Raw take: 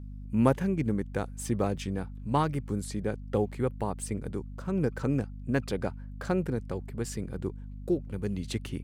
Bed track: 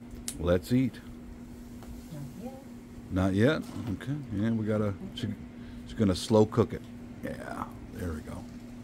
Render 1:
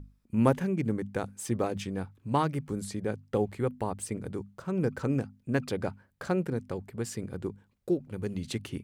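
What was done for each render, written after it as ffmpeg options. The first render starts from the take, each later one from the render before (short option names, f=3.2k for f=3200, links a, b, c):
-af "bandreject=f=50:t=h:w=6,bandreject=f=100:t=h:w=6,bandreject=f=150:t=h:w=6,bandreject=f=200:t=h:w=6,bandreject=f=250:t=h:w=6"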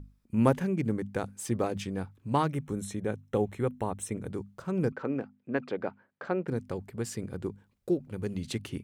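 -filter_complex "[0:a]asettb=1/sr,asplit=3[a][b][c];[a]atrim=end=2.464[d];[b]atrim=start=2.46:end=4.29,asetpts=PTS-STARTPTS,afade=t=in:d=0.004:c=qsin,afade=t=out:st=1.826:d=0.004:c=qsin,asuperstop=centerf=4700:order=20:qfactor=5.5[e];[c]atrim=start=4.286[f];[d][e]acrossfade=d=0.004:c1=hsin:c2=qsin[g];[g][f]acrossfade=d=0.004:c1=qsin:c2=hsin,asettb=1/sr,asplit=3[h][i][j];[h]atrim=end=4.924[k];[i]atrim=start=4.92:end=6.48,asetpts=PTS-STARTPTS,afade=t=in:d=0.004:c=qsin,afade=t=out:st=1.556:d=0.004:c=qsin,highpass=250,lowpass=2.5k[l];[j]atrim=start=6.476[m];[k][l]acrossfade=d=0.004:c1=hsin:c2=qsin[n];[n][m]acrossfade=d=0.004:c1=qsin:c2=hsin"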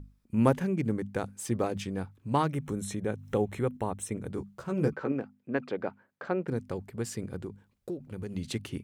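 -filter_complex "[0:a]asettb=1/sr,asplit=3[a][b][c];[a]atrim=end=2.414[d];[b]atrim=start=2.41:end=3.77,asetpts=PTS-STARTPTS,afade=t=in:d=0.004:c=qsin,afade=t=out:st=1.356:d=0.004:c=qsin,acompressor=mode=upward:threshold=-30dB:ratio=2.5:attack=3.2:release=140:knee=2.83:detection=peak[e];[c]atrim=start=3.766[f];[d][e]acrossfade=d=0.004:c1=hsin:c2=qsin[g];[g][f]acrossfade=d=0.004:c1=qsin:c2=hsin,asettb=1/sr,asplit=3[h][i][j];[h]atrim=end=4.364[k];[i]atrim=start=4.36:end=5.12,asetpts=PTS-STARTPTS,afade=t=in:d=0.004:c=qsin,afade=t=out:st=0.756:d=0.004:c=qsin,asplit=2[l][m];[m]adelay=14,volume=-4dB[n];[l][n]amix=inputs=2:normalize=0,atrim=end_sample=33516[o];[j]atrim=start=5.116[p];[k][o]acrossfade=d=0.004:c1=hsin:c2=qsin[q];[q][p]acrossfade=d=0.004:c1=qsin:c2=hsin,asettb=1/sr,asplit=3[r][s][t];[r]atrim=end=7.424[u];[s]atrim=start=7.42:end=8.36,asetpts=PTS-STARTPTS,afade=t=in:d=0.004:c=qsin,afade=t=out:st=0.936:d=0.004:c=qsin,acompressor=threshold=-34dB:ratio=3:attack=3.2:release=140:knee=1:detection=peak[v];[t]atrim=start=8.356[w];[u][v]acrossfade=d=0.004:c1=hsin:c2=qsin[x];[x][w]acrossfade=d=0.004:c1=qsin:c2=hsin"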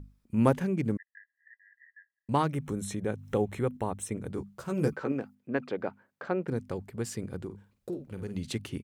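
-filter_complex "[0:a]asettb=1/sr,asplit=3[a][b][c];[a]atrim=end=0.974[d];[b]atrim=start=0.97:end=2.29,asetpts=PTS-STARTPTS,afade=t=in:d=0.004:c=qsin,afade=t=out:st=1.316:d=0.004:c=qsin,asuperpass=centerf=1800:order=20:qfactor=4.8[e];[c]atrim=start=2.286[f];[d][e]acrossfade=d=0.004:c1=hsin:c2=qsin[g];[g][f]acrossfade=d=0.004:c1=qsin:c2=hsin,asettb=1/sr,asplit=3[h][i][j];[h]atrim=end=4.594[k];[i]atrim=start=4.59:end=5.35,asetpts=PTS-STARTPTS,afade=t=in:d=0.004:c=qsin,afade=t=out:st=0.756:d=0.004:c=qsin,aemphasis=mode=production:type=cd[l];[j]atrim=start=5.346[m];[k][l]acrossfade=d=0.004:c1=hsin:c2=qsin[n];[n][m]acrossfade=d=0.004:c1=qsin:c2=hsin,asplit=3[o][p][q];[o]afade=t=out:st=7.49:d=0.02[r];[p]asplit=2[s][t];[t]adelay=50,volume=-9dB[u];[s][u]amix=inputs=2:normalize=0,afade=t=in:st=7.49:d=0.02,afade=t=out:st=8.31:d=0.02[v];[q]afade=t=in:st=8.31:d=0.02[w];[r][v][w]amix=inputs=3:normalize=0"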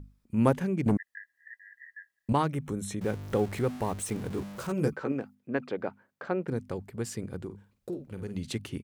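-filter_complex "[0:a]asettb=1/sr,asplit=3[a][b][c];[a]atrim=end=0.864[d];[b]atrim=start=0.86:end=2.33,asetpts=PTS-STARTPTS,afade=t=in:d=0.004:c=qsin,afade=t=out:st=1.466:d=0.004:c=qsin,aeval=exprs='0.126*sin(PI/2*1.58*val(0)/0.126)':c=same[e];[c]atrim=start=2.326[f];[d][e]acrossfade=d=0.004:c1=hsin:c2=qsin[g];[g][f]acrossfade=d=0.004:c1=qsin:c2=hsin,asettb=1/sr,asplit=3[h][i][j];[h]atrim=end=3.014[k];[i]atrim=start=3.01:end=4.72,asetpts=PTS-STARTPTS,afade=t=in:d=0.004:c=qsin,afade=t=out:st=1.706:d=0.004:c=qsin,aeval=exprs='val(0)+0.5*0.0126*sgn(val(0))':c=same[l];[j]atrim=start=4.716[m];[k][l]acrossfade=d=0.004:c1=hsin:c2=qsin[n];[n][m]acrossfade=d=0.004:c1=qsin:c2=hsin"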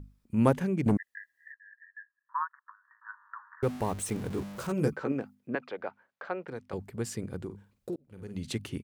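-filter_complex "[0:a]asettb=1/sr,asplit=3[a][b][c];[a]atrim=end=1.524[d];[b]atrim=start=1.52:end=3.63,asetpts=PTS-STARTPTS,afade=t=in:d=0.004:c=qsin,afade=t=out:st=2.106:d=0.004:c=qsin,asuperpass=centerf=1300:order=20:qfactor=1.5[e];[c]atrim=start=3.626[f];[d][e]acrossfade=d=0.004:c1=hsin:c2=qsin[g];[g][f]acrossfade=d=0.004:c1=qsin:c2=hsin,asettb=1/sr,asplit=3[h][i][j];[h]atrim=end=5.554[k];[i]atrim=start=5.55:end=6.73,asetpts=PTS-STARTPTS,afade=t=in:d=0.004:c=qsin,afade=t=out:st=1.176:d=0.004:c=qsin,acrossover=split=490 5100:gain=0.224 1 0.251[l][m][n];[l][m][n]amix=inputs=3:normalize=0[o];[j]atrim=start=6.726[p];[k][o]acrossfade=d=0.004:c1=hsin:c2=qsin[q];[q][p]acrossfade=d=0.004:c1=qsin:c2=hsin,asplit=2[r][s];[r]atrim=end=7.96,asetpts=PTS-STARTPTS,afade=t=out:st=7.956:d=0.004:c=hsin[t];[s]atrim=start=7.96,asetpts=PTS-STARTPTS,afade=t=in:d=0.53[u];[t][u]concat=n=2:v=0:a=1"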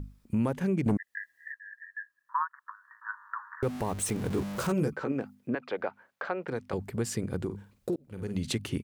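-filter_complex "[0:a]asplit=2[a][b];[b]acompressor=threshold=-37dB:ratio=6,volume=2.5dB[c];[a][c]amix=inputs=2:normalize=0,alimiter=limit=-19.5dB:level=0:latency=1:release=192"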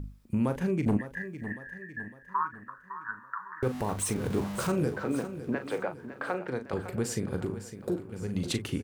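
-filter_complex "[0:a]asplit=2[a][b];[b]adelay=39,volume=-9.5dB[c];[a][c]amix=inputs=2:normalize=0,asplit=2[d][e];[e]aecho=0:1:556|1112|1668|2224|2780:0.251|0.118|0.0555|0.0261|0.0123[f];[d][f]amix=inputs=2:normalize=0"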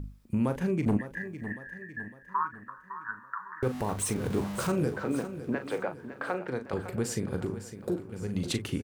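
-filter_complex "[0:a]asplit=2[a][b];[b]adelay=367.3,volume=-27dB,highshelf=f=4k:g=-8.27[c];[a][c]amix=inputs=2:normalize=0"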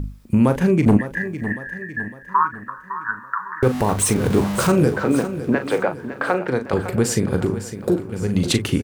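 -af "volume=12dB"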